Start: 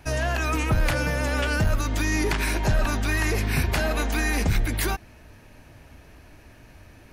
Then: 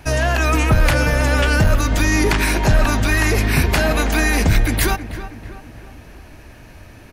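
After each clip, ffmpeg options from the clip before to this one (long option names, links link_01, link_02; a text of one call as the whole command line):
ffmpeg -i in.wav -filter_complex "[0:a]asplit=2[link_01][link_02];[link_02]adelay=322,lowpass=frequency=2200:poles=1,volume=-12dB,asplit=2[link_03][link_04];[link_04]adelay=322,lowpass=frequency=2200:poles=1,volume=0.52,asplit=2[link_05][link_06];[link_06]adelay=322,lowpass=frequency=2200:poles=1,volume=0.52,asplit=2[link_07][link_08];[link_08]adelay=322,lowpass=frequency=2200:poles=1,volume=0.52,asplit=2[link_09][link_10];[link_10]adelay=322,lowpass=frequency=2200:poles=1,volume=0.52[link_11];[link_01][link_03][link_05][link_07][link_09][link_11]amix=inputs=6:normalize=0,volume=7.5dB" out.wav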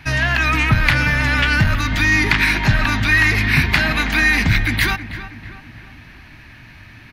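ffmpeg -i in.wav -af "equalizer=frequency=125:width_type=o:width=1:gain=8,equalizer=frequency=250:width_type=o:width=1:gain=5,equalizer=frequency=500:width_type=o:width=1:gain=-9,equalizer=frequency=1000:width_type=o:width=1:gain=4,equalizer=frequency=2000:width_type=o:width=1:gain=12,equalizer=frequency=4000:width_type=o:width=1:gain=9,equalizer=frequency=8000:width_type=o:width=1:gain=-6,volume=-6dB" out.wav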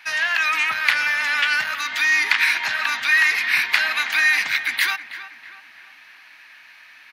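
ffmpeg -i in.wav -af "highpass=1100,volume=-1dB" out.wav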